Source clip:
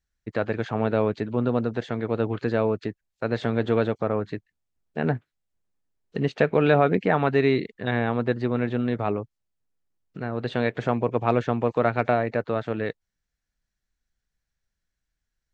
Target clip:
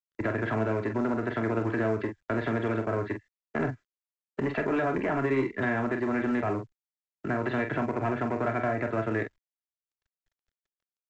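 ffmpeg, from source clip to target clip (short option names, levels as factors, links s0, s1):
-filter_complex "[0:a]agate=range=0.0224:threshold=0.0112:ratio=3:detection=peak,aecho=1:1:3:0.57,asplit=2[s0][s1];[s1]alimiter=limit=0.158:level=0:latency=1:release=85,volume=0.841[s2];[s0][s2]amix=inputs=2:normalize=0,atempo=1.4,acrossover=split=88|330[s3][s4][s5];[s3]acompressor=threshold=0.00355:ratio=4[s6];[s4]acompressor=threshold=0.0355:ratio=4[s7];[s5]acompressor=threshold=0.0355:ratio=4[s8];[s6][s7][s8]amix=inputs=3:normalize=0,acrossover=split=120[s9][s10];[s10]asoftclip=type=tanh:threshold=0.0668[s11];[s9][s11]amix=inputs=2:normalize=0,lowpass=f=1900:t=q:w=1.8,aecho=1:1:30|45:0.266|0.422" -ar 16000 -c:a pcm_mulaw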